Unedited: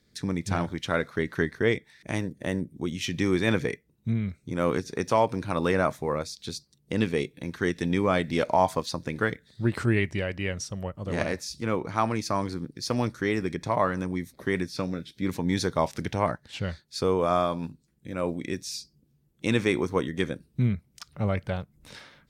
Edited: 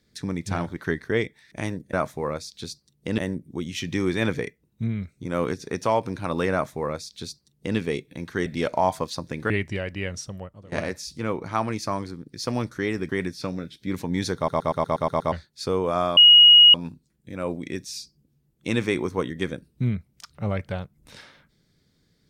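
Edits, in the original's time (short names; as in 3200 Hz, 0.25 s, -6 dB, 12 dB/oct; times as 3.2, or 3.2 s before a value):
0.77–1.28 cut
5.78–7.03 copy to 2.44
7.72–8.22 cut
9.26–9.93 cut
10.67–11.15 fade out, to -23 dB
12.33–12.69 fade out linear, to -6 dB
13.52–14.44 cut
15.71 stutter in place 0.12 s, 8 plays
17.52 add tone 2890 Hz -8 dBFS 0.57 s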